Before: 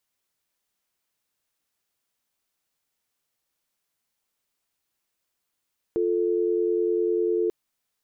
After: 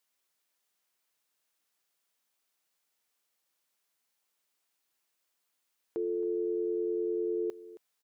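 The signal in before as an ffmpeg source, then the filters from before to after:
-f lavfi -i "aevalsrc='0.0668*(sin(2*PI*350*t)+sin(2*PI*440*t))':d=1.54:s=44100"
-af "highpass=f=350:p=1,alimiter=level_in=2.5dB:limit=-24dB:level=0:latency=1:release=15,volume=-2.5dB,aecho=1:1:271:0.15"

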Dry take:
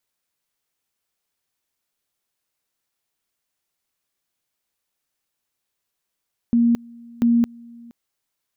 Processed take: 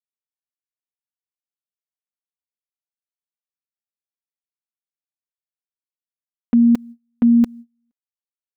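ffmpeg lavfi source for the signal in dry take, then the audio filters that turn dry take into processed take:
-f lavfi -i "aevalsrc='pow(10,(-13-26*gte(mod(t,0.69),0.22))/20)*sin(2*PI*235*t)':d=1.38:s=44100"
-af "agate=range=-32dB:threshold=-37dB:ratio=16:detection=peak,aecho=1:1:4.1:0.65"

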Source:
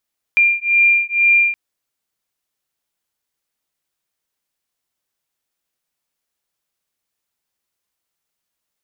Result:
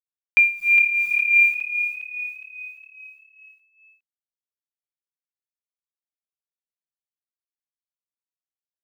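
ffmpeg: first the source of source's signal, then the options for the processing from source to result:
-f lavfi -i "aevalsrc='0.188*(sin(2*PI*2390*t)+sin(2*PI*2392.1*t))':d=1.17:s=44100"
-filter_complex "[0:a]acrusher=bits=8:dc=4:mix=0:aa=0.000001,tremolo=f=2.8:d=0.78,asplit=7[a][b][c][d][e][f][g];[b]adelay=411,afreqshift=36,volume=-9dB[h];[c]adelay=822,afreqshift=72,volume=-15.2dB[i];[d]adelay=1233,afreqshift=108,volume=-21.4dB[j];[e]adelay=1644,afreqshift=144,volume=-27.6dB[k];[f]adelay=2055,afreqshift=180,volume=-33.8dB[l];[g]adelay=2466,afreqshift=216,volume=-40dB[m];[a][h][i][j][k][l][m]amix=inputs=7:normalize=0"

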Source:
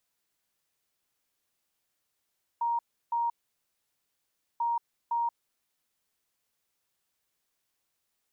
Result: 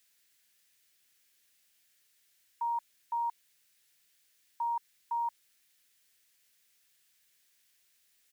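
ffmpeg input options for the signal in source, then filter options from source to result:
-f lavfi -i "aevalsrc='0.0531*sin(2*PI*938*t)*clip(min(mod(mod(t,1.99),0.51),0.18-mod(mod(t,1.99),0.51))/0.005,0,1)*lt(mod(t,1.99),1.02)':d=3.98:s=44100"
-af "firequalizer=gain_entry='entry(490,0);entry(710,-3);entry(1100,-3);entry(1700,10)':delay=0.05:min_phase=1"

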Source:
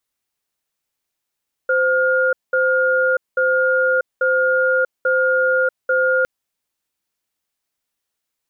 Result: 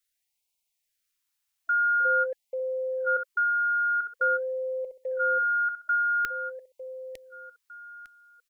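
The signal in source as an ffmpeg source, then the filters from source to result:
-f lavfi -i "aevalsrc='0.15*(sin(2*PI*518*t)+sin(2*PI*1420*t))*clip(min(mod(t,0.84),0.64-mod(t,0.84))/0.005,0,1)':d=4.56:s=44100"
-filter_complex "[0:a]equalizer=f=230:w=0.32:g=-15,asplit=2[a][b];[b]aecho=0:1:904|1808|2712:0.376|0.0902|0.0216[c];[a][c]amix=inputs=2:normalize=0,afftfilt=real='re*(1-between(b*sr/1024,450*pow(1500/450,0.5+0.5*sin(2*PI*0.47*pts/sr))/1.41,450*pow(1500/450,0.5+0.5*sin(2*PI*0.47*pts/sr))*1.41))':imag='im*(1-between(b*sr/1024,450*pow(1500/450,0.5+0.5*sin(2*PI*0.47*pts/sr))/1.41,450*pow(1500/450,0.5+0.5*sin(2*PI*0.47*pts/sr))*1.41))':win_size=1024:overlap=0.75"

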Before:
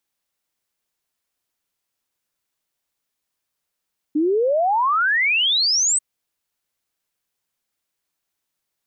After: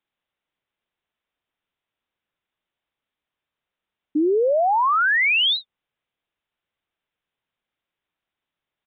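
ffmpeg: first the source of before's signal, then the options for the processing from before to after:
-f lavfi -i "aevalsrc='0.168*clip(min(t,1.84-t)/0.01,0,1)*sin(2*PI*290*1.84/log(8400/290)*(exp(log(8400/290)*t/1.84)-1))':d=1.84:s=44100"
-af "aresample=8000,aresample=44100"

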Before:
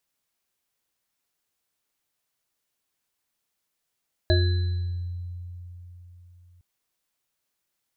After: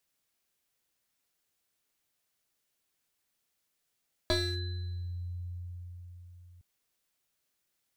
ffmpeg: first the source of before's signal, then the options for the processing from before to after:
-f lavfi -i "aevalsrc='0.141*pow(10,-3*t/3.87)*sin(2*PI*88.3*t)+0.0794*pow(10,-3*t/0.95)*sin(2*PI*355*t)+0.0944*pow(10,-3*t/0.23)*sin(2*PI*628*t)+0.0316*pow(10,-3*t/0.94)*sin(2*PI*1670*t)+0.0501*pow(10,-3*t/1.21)*sin(2*PI*4030*t)':d=2.31:s=44100"
-filter_complex "[0:a]equalizer=f=970:w=1.9:g=-3,acrossover=split=300[a][b];[a]acompressor=threshold=-36dB:ratio=6[c];[b]aeval=exprs='clip(val(0),-1,0.0168)':c=same[d];[c][d]amix=inputs=2:normalize=0"

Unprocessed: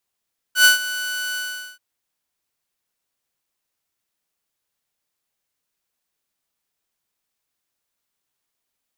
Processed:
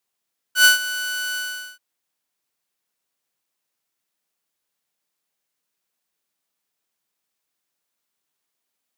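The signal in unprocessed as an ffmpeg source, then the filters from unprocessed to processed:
-f lavfi -i "aevalsrc='0.531*(2*mod(1490*t,1)-1)':d=1.232:s=44100,afade=t=in:d=0.099,afade=t=out:st=0.099:d=0.13:silence=0.158,afade=t=out:st=0.81:d=0.422"
-af "highpass=130"

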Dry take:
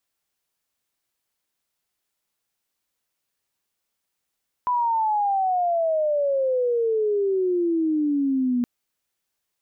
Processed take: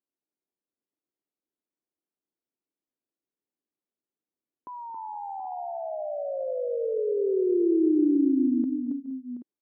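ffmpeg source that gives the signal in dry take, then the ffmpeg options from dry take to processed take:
-f lavfi -i "aevalsrc='0.112*sin(2*PI*1000*3.97/log(240/1000)*(exp(log(240/1000)*t/3.97)-1))':d=3.97:s=44100"
-filter_complex "[0:a]bandpass=f=310:t=q:w=2.4:csg=0,asplit=2[a][b];[b]aecho=0:1:228|274|419|470|726|779:0.126|0.501|0.119|0.119|0.211|0.188[c];[a][c]amix=inputs=2:normalize=0"

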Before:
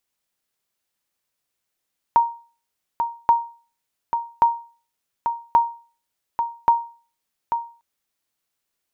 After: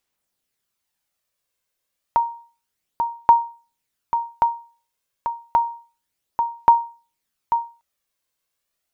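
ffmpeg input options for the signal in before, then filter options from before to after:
-f lavfi -i "aevalsrc='0.422*(sin(2*PI*934*mod(t,1.13))*exp(-6.91*mod(t,1.13)/0.38)+0.422*sin(2*PI*934*max(mod(t,1.13)-0.84,0))*exp(-6.91*max(mod(t,1.13)-0.84,0)/0.38))':d=5.65:s=44100"
-af "aphaser=in_gain=1:out_gain=1:delay=1.9:decay=0.36:speed=0.3:type=sinusoidal"

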